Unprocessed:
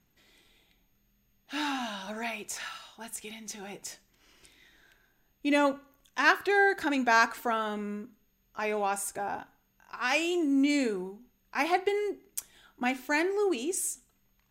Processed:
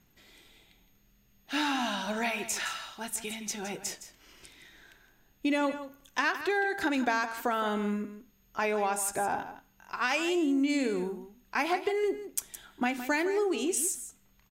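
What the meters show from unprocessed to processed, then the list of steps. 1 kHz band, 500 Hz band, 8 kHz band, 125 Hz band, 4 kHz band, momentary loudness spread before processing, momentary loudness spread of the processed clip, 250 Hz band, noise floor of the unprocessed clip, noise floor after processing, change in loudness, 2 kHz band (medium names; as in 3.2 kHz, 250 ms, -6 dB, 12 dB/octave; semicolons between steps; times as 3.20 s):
-1.5 dB, -0.5 dB, +3.0 dB, no reading, +0.5 dB, 17 LU, 10 LU, 0.0 dB, -71 dBFS, -66 dBFS, -1.5 dB, -2.5 dB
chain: compression 10:1, threshold -30 dBFS, peak gain reduction 13.5 dB; delay 164 ms -12 dB; trim +5 dB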